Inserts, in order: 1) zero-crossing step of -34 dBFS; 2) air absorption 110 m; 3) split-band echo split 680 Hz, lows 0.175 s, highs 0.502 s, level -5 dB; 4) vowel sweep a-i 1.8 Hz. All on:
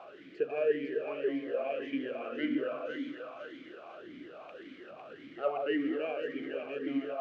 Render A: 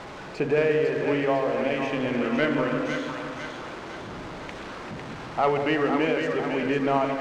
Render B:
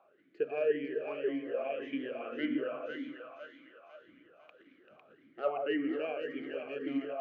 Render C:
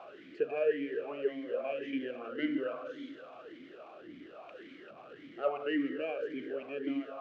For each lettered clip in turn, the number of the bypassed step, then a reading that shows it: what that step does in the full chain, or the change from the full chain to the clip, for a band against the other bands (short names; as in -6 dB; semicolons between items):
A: 4, 125 Hz band +12.0 dB; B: 1, distortion -15 dB; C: 3, momentary loudness spread change +2 LU